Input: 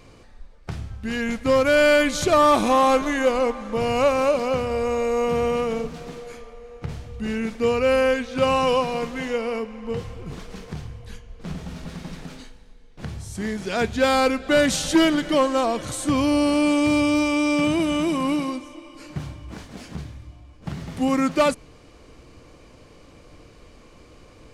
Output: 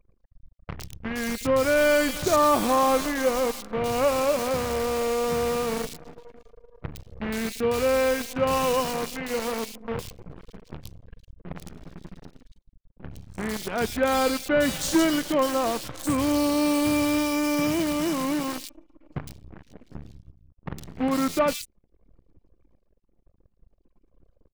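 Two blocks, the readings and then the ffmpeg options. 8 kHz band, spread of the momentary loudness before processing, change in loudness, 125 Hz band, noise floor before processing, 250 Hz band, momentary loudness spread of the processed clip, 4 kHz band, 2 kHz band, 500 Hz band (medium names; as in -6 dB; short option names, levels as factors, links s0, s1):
+0.5 dB, 19 LU, -3.5 dB, -4.5 dB, -49 dBFS, -3.5 dB, 20 LU, -3.5 dB, -4.0 dB, -3.5 dB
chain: -filter_complex "[0:a]acrusher=bits=5:dc=4:mix=0:aa=0.000001,anlmdn=0.251,acrossover=split=2800[s0][s1];[s1]adelay=110[s2];[s0][s2]amix=inputs=2:normalize=0,volume=0.668"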